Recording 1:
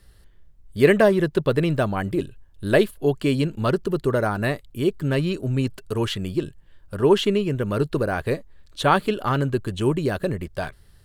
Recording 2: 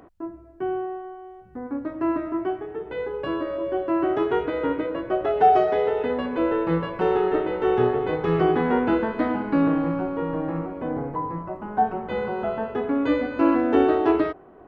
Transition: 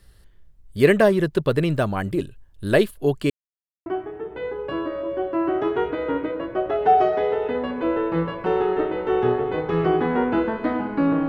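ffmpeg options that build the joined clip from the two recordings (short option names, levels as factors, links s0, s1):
-filter_complex "[0:a]apad=whole_dur=11.28,atrim=end=11.28,asplit=2[s0][s1];[s0]atrim=end=3.3,asetpts=PTS-STARTPTS,afade=t=out:st=3.296:d=0.004:c=hsin[s2];[s1]atrim=start=3.3:end=3.86,asetpts=PTS-STARTPTS,volume=0[s3];[1:a]atrim=start=2.41:end=9.83,asetpts=PTS-STARTPTS,afade=t=in:d=0.004:c=hsin[s4];[s2][s3][s4]concat=n=3:v=0:a=1"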